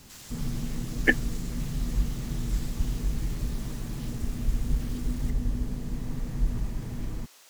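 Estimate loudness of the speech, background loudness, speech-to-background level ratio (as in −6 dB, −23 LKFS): −36.0 LKFS, −33.5 LKFS, −2.5 dB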